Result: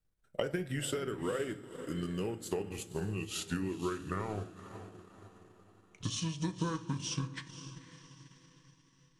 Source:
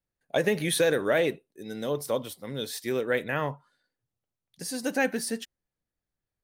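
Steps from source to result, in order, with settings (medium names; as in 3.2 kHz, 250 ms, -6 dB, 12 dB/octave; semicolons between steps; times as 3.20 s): gliding tape speed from 88% -> 52%; bass shelf 110 Hz +10.5 dB; compression 6:1, threshold -35 dBFS, peak gain reduction 15.5 dB; echo that smears into a reverb 508 ms, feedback 44%, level -11 dB; transient shaper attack +4 dB, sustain -7 dB; on a send at -9 dB: reverberation RT60 0.60 s, pre-delay 5 ms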